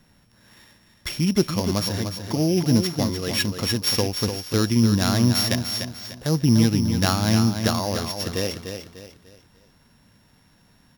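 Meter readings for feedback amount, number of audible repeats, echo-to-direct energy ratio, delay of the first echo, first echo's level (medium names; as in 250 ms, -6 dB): 36%, 4, -7.0 dB, 297 ms, -7.5 dB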